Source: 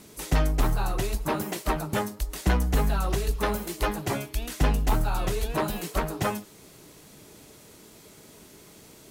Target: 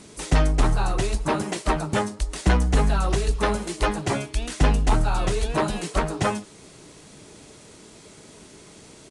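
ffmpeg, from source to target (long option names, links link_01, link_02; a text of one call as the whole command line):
ffmpeg -i in.wav -af "aresample=22050,aresample=44100,volume=4dB" out.wav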